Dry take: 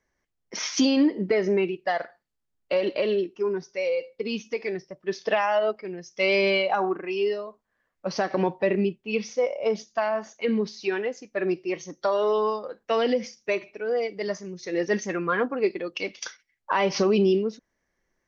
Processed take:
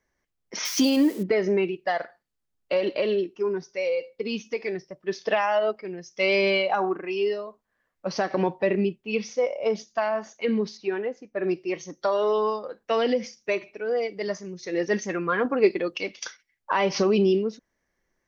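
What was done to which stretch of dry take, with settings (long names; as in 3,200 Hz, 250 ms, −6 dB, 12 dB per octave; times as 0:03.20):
0:00.65–0:01.23: spike at every zero crossing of −29.5 dBFS
0:10.77–0:11.44: low-pass filter 1,300 Hz 6 dB per octave
0:15.45–0:15.96: clip gain +4.5 dB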